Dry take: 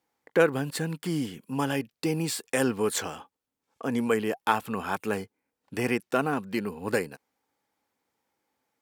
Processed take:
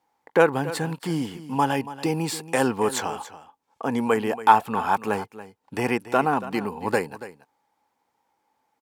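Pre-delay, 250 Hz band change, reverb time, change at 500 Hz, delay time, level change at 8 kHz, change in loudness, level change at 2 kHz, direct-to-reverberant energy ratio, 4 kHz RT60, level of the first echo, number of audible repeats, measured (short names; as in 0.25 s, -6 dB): none, +2.5 dB, none, +3.5 dB, 0.282 s, +0.5 dB, +4.5 dB, +3.0 dB, none, none, -15.0 dB, 1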